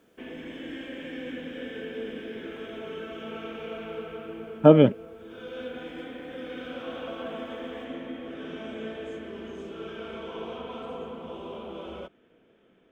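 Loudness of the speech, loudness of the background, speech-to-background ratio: −18.5 LKFS, −38.5 LKFS, 20.0 dB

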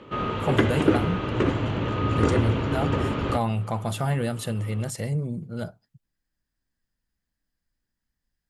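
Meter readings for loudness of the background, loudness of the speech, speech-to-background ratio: −25.0 LKFS, −29.0 LKFS, −4.0 dB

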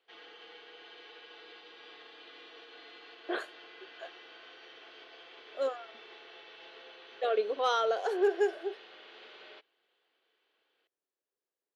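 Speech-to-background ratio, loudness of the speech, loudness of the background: 19.5 dB, −31.5 LKFS, −51.0 LKFS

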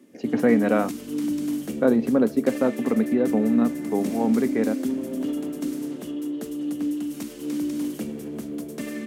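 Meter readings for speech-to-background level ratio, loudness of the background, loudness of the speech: 6.5 dB, −29.5 LKFS, −23.0 LKFS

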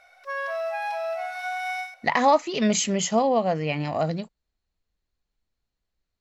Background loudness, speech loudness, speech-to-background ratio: −30.5 LKFS, −23.5 LKFS, 7.0 dB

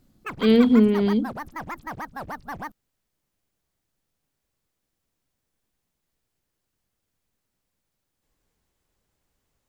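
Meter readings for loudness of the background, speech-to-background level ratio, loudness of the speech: −36.0 LKFS, 16.5 dB, −19.5 LKFS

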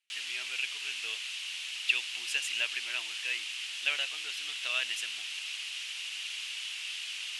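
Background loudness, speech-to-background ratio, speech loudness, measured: −36.0 LKFS, 1.5 dB, −34.5 LKFS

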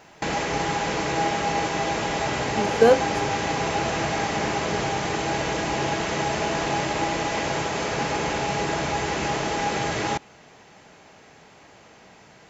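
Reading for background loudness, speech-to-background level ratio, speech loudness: −25.5 LKFS, 6.0 dB, −19.5 LKFS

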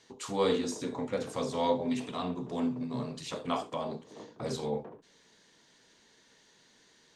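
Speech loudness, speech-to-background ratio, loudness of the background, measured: −34.0 LKFS, 15.0 dB, −49.0 LKFS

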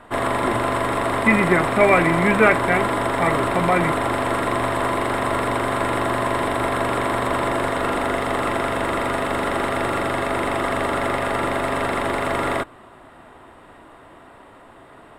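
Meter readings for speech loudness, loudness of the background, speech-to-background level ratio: −19.5 LKFS, −22.0 LKFS, 2.5 dB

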